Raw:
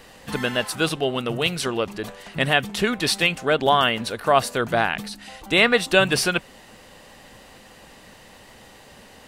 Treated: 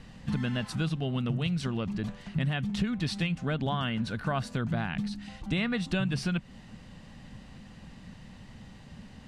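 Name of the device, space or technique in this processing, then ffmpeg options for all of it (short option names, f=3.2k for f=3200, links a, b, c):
jukebox: -filter_complex "[0:a]lowpass=6.6k,lowshelf=f=280:t=q:w=1.5:g=13,acompressor=threshold=-19dB:ratio=4,asettb=1/sr,asplit=3[a][b][c];[a]atrim=end=3.884[d];[b]atrim=start=3.88:end=4.47,asetpts=PTS-STARTPTS,afade=t=in:d=0.004:c=qsin,afade=t=out:st=0.586:d=0.004:c=qsin,equalizer=f=1.5k:w=7.9:g=8[e];[c]atrim=start=4.466[f];[d][e]acrossfade=d=0.004:c1=hsin:c2=qsin[g];[g][f]acrossfade=d=0.004:c1=qsin:c2=hsin,volume=-8dB"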